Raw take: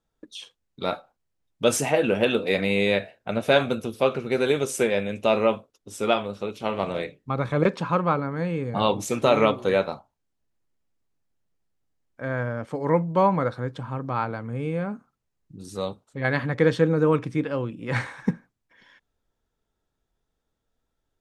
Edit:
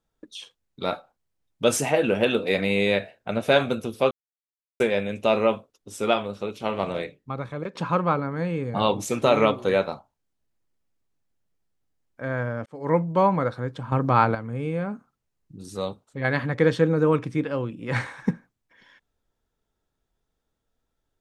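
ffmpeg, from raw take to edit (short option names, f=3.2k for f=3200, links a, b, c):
-filter_complex "[0:a]asplit=7[a][b][c][d][e][f][g];[a]atrim=end=4.11,asetpts=PTS-STARTPTS,afade=t=out:st=4.106:d=0.004:c=hsin[h];[b]atrim=start=4.11:end=4.8,asetpts=PTS-STARTPTS,volume=0[i];[c]atrim=start=4.8:end=7.75,asetpts=PTS-STARTPTS,afade=t=in:d=0.004:c=hsin,afade=t=out:st=2.13:d=0.82:silence=0.149624[j];[d]atrim=start=7.75:end=12.66,asetpts=PTS-STARTPTS,afade=t=in:d=0.004:c=hsin:silence=0.149624,afade=t=out:st=4.906:d=0.004:c=hsin[k];[e]atrim=start=12.66:end=13.922,asetpts=PTS-STARTPTS,afade=t=in:d=0.28[l];[f]atrim=start=13.918:end=14.352,asetpts=PTS-STARTPTS,volume=8dB[m];[g]atrim=start=14.348[n];[h][i][j][k][l]concat=n=5:v=0:a=1[o];[o][m]acrossfade=d=0.004:c1=hsin:c2=hsin[p];[p][n]acrossfade=d=0.004:c1=hsin:c2=hsin"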